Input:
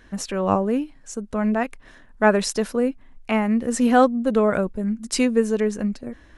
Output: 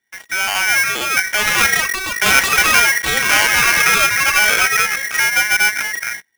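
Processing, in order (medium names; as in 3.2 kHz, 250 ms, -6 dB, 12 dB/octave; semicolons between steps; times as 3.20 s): low-pass 1.5 kHz 12 dB/octave; hum notches 60/120/180/240/300 Hz; gate -40 dBFS, range -10 dB; 1.39–3.79 s: waveshaping leveller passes 3; peak limiter -14 dBFS, peak gain reduction 8.5 dB; level rider gain up to 12 dB; waveshaping leveller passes 3; static phaser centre 650 Hz, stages 6; ever faster or slower copies 596 ms, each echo +5 st, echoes 2; polarity switched at an audio rate 1.9 kHz; trim -4.5 dB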